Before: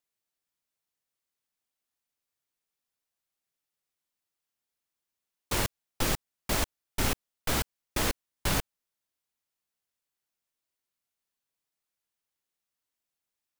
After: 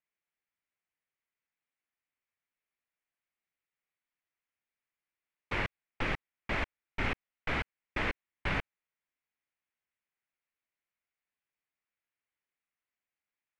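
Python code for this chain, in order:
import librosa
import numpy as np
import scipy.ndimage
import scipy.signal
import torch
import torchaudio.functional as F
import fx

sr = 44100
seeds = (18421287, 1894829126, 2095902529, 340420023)

y = fx.lowpass_res(x, sr, hz=2200.0, q=2.6)
y = y * 10.0 ** (-5.0 / 20.0)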